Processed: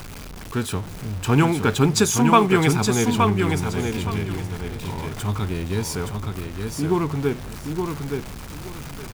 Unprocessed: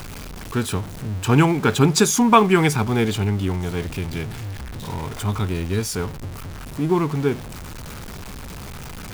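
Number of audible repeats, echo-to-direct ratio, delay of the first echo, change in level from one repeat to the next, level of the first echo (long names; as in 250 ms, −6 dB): 2, −5.0 dB, 870 ms, −13.0 dB, −5.0 dB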